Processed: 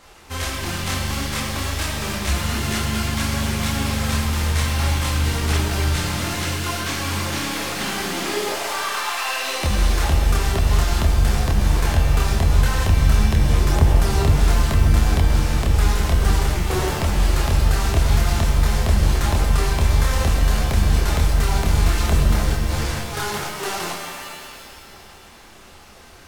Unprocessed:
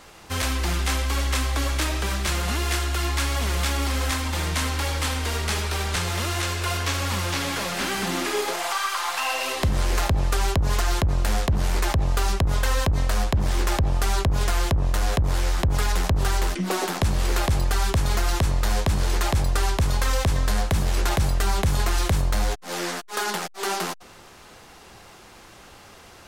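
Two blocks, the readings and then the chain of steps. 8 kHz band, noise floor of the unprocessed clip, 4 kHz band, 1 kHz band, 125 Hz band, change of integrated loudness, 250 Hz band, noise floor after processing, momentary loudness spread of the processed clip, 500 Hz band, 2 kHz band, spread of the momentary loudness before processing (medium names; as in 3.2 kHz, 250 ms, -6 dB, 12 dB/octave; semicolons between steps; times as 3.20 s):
+1.5 dB, -47 dBFS, +2.0 dB, +1.0 dB, +5.0 dB, +4.0 dB, +4.5 dB, -44 dBFS, 7 LU, +2.0 dB, +2.0 dB, 2 LU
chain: chorus voices 6, 1.5 Hz, delay 27 ms, depth 3 ms; pitch-shifted reverb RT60 2 s, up +7 st, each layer -2 dB, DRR 4.5 dB; trim +2 dB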